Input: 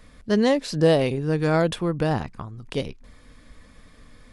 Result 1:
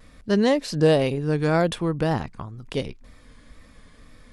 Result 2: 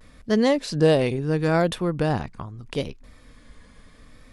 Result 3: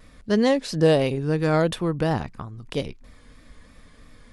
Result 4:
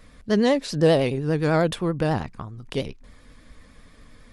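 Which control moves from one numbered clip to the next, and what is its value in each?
vibrato, rate: 2 Hz, 0.75 Hz, 3 Hz, 10 Hz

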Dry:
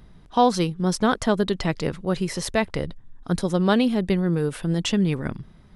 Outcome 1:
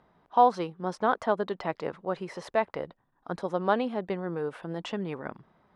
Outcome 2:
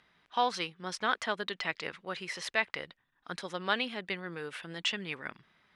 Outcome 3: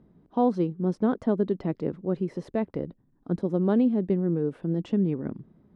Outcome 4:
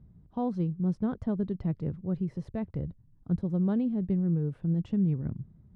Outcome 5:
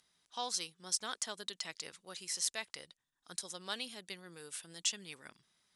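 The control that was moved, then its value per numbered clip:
band-pass filter, frequency: 850 Hz, 2.2 kHz, 300 Hz, 110 Hz, 7.7 kHz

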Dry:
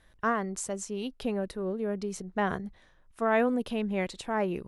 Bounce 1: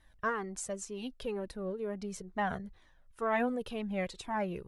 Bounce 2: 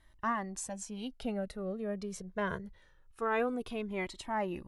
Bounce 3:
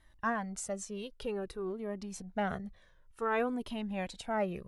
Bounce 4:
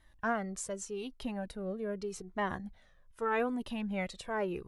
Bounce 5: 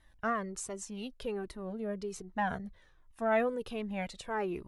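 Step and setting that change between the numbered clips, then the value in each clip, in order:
Shepard-style flanger, rate: 2.1 Hz, 0.24 Hz, 0.54 Hz, 0.83 Hz, 1.3 Hz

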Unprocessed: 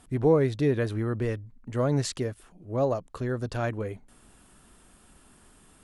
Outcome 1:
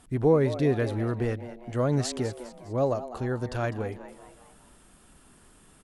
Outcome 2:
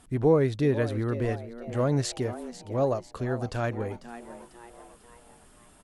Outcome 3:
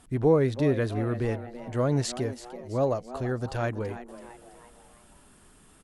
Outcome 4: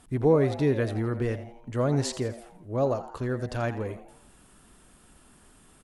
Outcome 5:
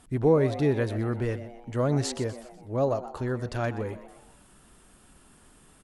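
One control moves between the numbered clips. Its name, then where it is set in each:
frequency-shifting echo, time: 203 ms, 496 ms, 331 ms, 84 ms, 124 ms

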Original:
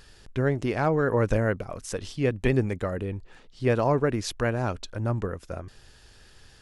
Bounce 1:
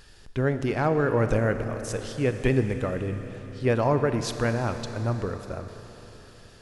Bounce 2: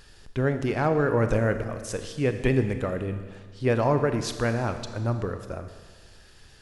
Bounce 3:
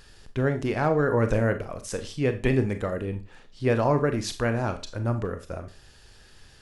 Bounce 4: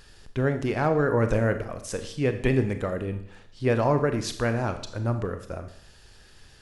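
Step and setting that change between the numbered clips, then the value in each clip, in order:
Schroeder reverb, RT60: 4.2 s, 1.6 s, 0.31 s, 0.66 s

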